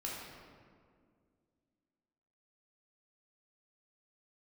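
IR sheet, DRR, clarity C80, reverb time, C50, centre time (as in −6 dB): −5.0 dB, 1.5 dB, 2.1 s, −0.5 dB, 102 ms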